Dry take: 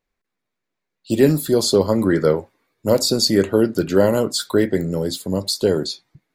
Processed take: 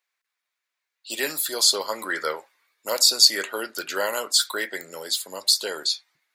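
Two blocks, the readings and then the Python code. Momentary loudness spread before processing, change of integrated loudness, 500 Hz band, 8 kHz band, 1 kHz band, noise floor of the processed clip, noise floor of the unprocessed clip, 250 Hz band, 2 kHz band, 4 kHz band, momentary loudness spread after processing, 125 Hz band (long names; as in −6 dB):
8 LU, −3.0 dB, −13.5 dB, +4.0 dB, −1.5 dB, −84 dBFS, −81 dBFS, −22.0 dB, +2.5 dB, +4.0 dB, 14 LU, below −30 dB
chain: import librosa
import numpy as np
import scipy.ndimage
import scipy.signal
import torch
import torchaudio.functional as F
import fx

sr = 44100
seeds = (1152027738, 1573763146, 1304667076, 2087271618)

y = scipy.signal.sosfilt(scipy.signal.butter(2, 1300.0, 'highpass', fs=sr, output='sos'), x)
y = y * 10.0 ** (4.0 / 20.0)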